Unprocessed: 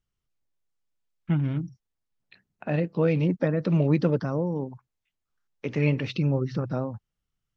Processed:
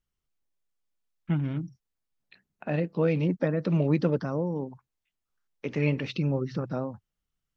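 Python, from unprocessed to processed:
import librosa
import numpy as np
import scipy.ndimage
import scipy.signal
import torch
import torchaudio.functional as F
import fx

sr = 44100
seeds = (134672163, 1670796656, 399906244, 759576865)

y = fx.peak_eq(x, sr, hz=110.0, db=-8.0, octaves=0.4)
y = y * 10.0 ** (-1.5 / 20.0)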